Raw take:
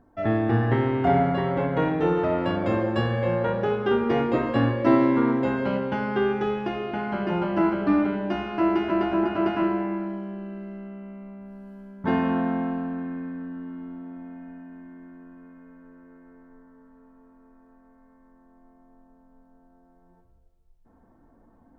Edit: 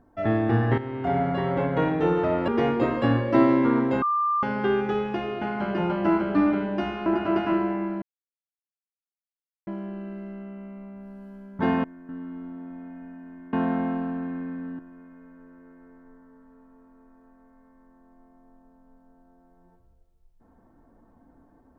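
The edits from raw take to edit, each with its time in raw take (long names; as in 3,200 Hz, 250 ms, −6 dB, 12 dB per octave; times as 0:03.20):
0:00.78–0:01.53: fade in, from −12 dB
0:02.48–0:04.00: remove
0:05.54–0:05.95: beep over 1,190 Hz −20.5 dBFS
0:08.58–0:09.16: remove
0:10.12: splice in silence 1.65 s
0:12.29–0:13.55: swap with 0:14.99–0:15.24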